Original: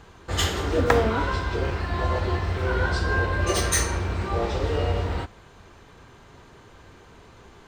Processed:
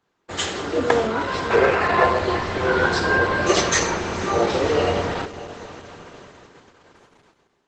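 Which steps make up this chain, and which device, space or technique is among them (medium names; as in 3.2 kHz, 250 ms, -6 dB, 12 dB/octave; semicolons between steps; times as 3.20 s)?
3.60–4.10 s: treble shelf 4.1 kHz -> 7.4 kHz -5 dB; echo that smears into a reverb 532 ms, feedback 45%, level -15.5 dB; 1.50–2.09 s: time-frequency box 370–2900 Hz +7 dB; video call (high-pass 180 Hz 12 dB/octave; level rider gain up to 8.5 dB; gate -40 dBFS, range -20 dB; Opus 12 kbps 48 kHz)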